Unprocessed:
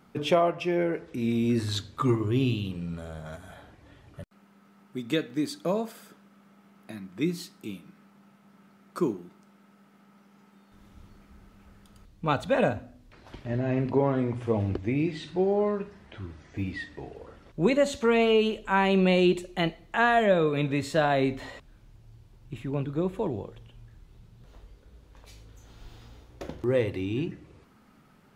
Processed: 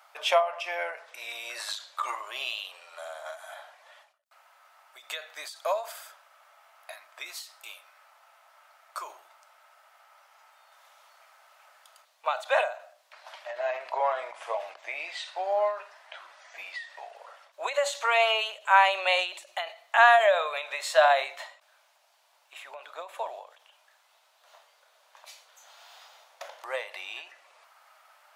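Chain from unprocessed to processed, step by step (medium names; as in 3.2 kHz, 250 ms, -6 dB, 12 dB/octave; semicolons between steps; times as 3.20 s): Chebyshev high-pass 610 Hz, order 5; endings held to a fixed fall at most 130 dB/s; trim +6.5 dB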